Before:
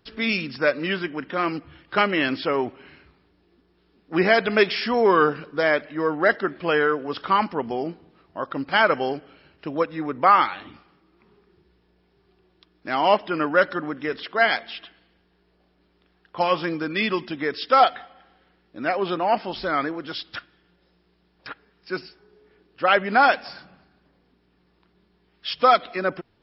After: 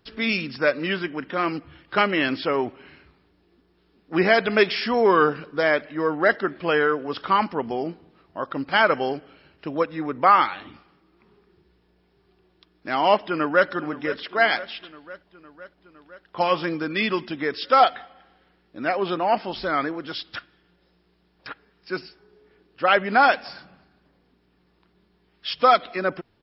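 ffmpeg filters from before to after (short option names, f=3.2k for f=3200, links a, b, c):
-filter_complex "[0:a]asplit=2[a][b];[b]afade=t=in:st=13.22:d=0.01,afade=t=out:st=13.69:d=0.01,aecho=0:1:510|1020|1530|2040|2550|3060|3570|4080:0.16788|0.117516|0.0822614|0.057583|0.0403081|0.0282157|0.019751|0.0138257[c];[a][c]amix=inputs=2:normalize=0"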